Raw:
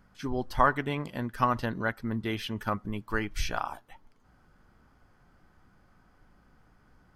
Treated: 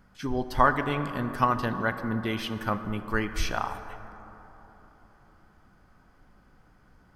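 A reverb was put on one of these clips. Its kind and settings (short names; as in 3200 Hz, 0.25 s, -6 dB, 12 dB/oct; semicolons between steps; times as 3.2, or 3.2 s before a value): plate-style reverb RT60 3.8 s, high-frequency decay 0.35×, DRR 9 dB; gain +2 dB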